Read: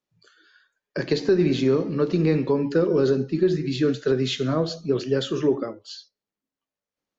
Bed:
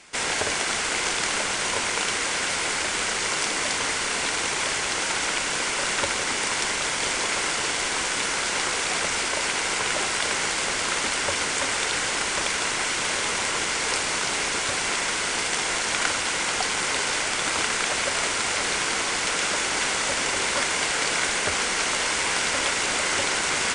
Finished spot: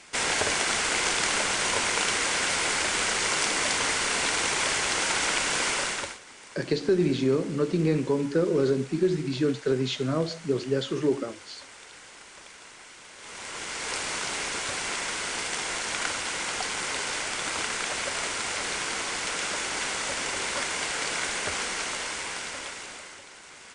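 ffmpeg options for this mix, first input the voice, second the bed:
ffmpeg -i stem1.wav -i stem2.wav -filter_complex "[0:a]adelay=5600,volume=-3.5dB[link_01];[1:a]volume=16dB,afade=type=out:start_time=5.71:duration=0.48:silence=0.0841395,afade=type=in:start_time=13.16:duration=0.89:silence=0.149624,afade=type=out:start_time=21.59:duration=1.62:silence=0.133352[link_02];[link_01][link_02]amix=inputs=2:normalize=0" out.wav

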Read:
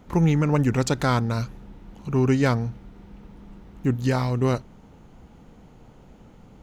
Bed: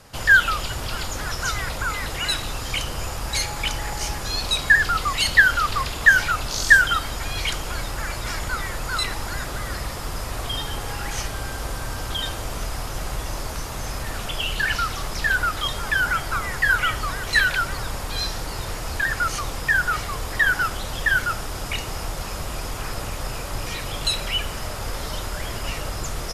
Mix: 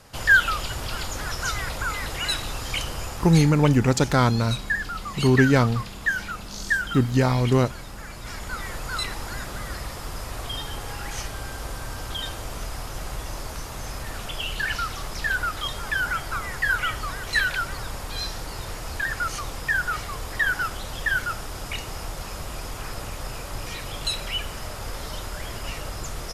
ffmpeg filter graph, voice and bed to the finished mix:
ffmpeg -i stem1.wav -i stem2.wav -filter_complex "[0:a]adelay=3100,volume=2.5dB[link_01];[1:a]volume=4.5dB,afade=type=out:start_time=2.88:duration=0.77:silence=0.375837,afade=type=in:start_time=8.14:duration=0.57:silence=0.473151[link_02];[link_01][link_02]amix=inputs=2:normalize=0" out.wav

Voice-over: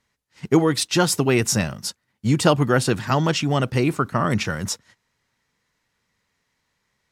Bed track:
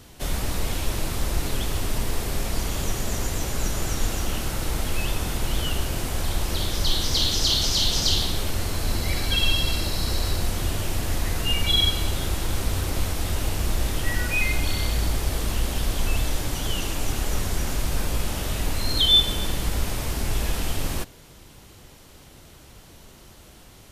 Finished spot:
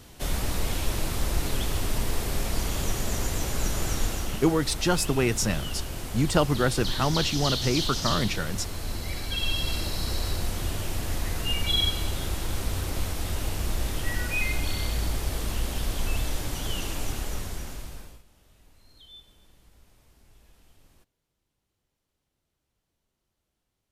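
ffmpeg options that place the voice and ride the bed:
ffmpeg -i stem1.wav -i stem2.wav -filter_complex "[0:a]adelay=3900,volume=-5.5dB[link_01];[1:a]volume=2dB,afade=type=out:start_time=3.95:duration=0.53:silence=0.501187,afade=type=in:start_time=9.34:duration=0.42:silence=0.668344,afade=type=out:start_time=16.98:duration=1.25:silence=0.0375837[link_02];[link_01][link_02]amix=inputs=2:normalize=0" out.wav

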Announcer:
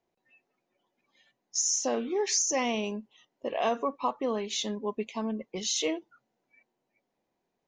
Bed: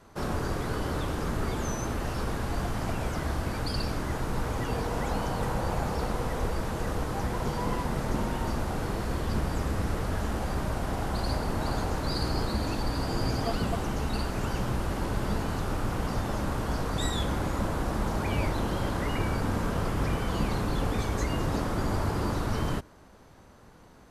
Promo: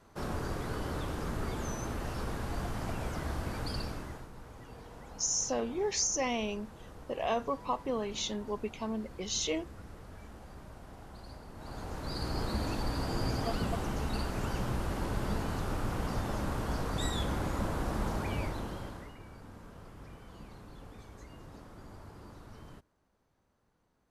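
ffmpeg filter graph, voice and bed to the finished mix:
ffmpeg -i stem1.wav -i stem2.wav -filter_complex "[0:a]adelay=3650,volume=-3.5dB[link_01];[1:a]volume=9.5dB,afade=type=out:start_time=3.72:duration=0.58:silence=0.211349,afade=type=in:start_time=11.54:duration=1.03:silence=0.177828,afade=type=out:start_time=18.07:duration=1.08:silence=0.133352[link_02];[link_01][link_02]amix=inputs=2:normalize=0" out.wav

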